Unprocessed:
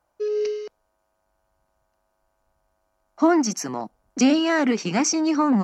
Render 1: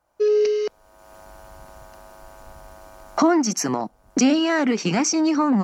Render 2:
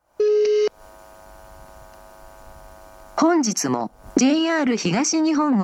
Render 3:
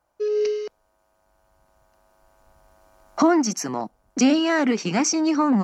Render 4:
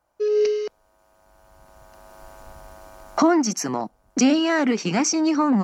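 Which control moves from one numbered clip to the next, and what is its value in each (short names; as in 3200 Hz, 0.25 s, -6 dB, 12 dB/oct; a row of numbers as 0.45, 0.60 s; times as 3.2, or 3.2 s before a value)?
recorder AGC, rising by: 33, 87, 5.2, 13 dB/s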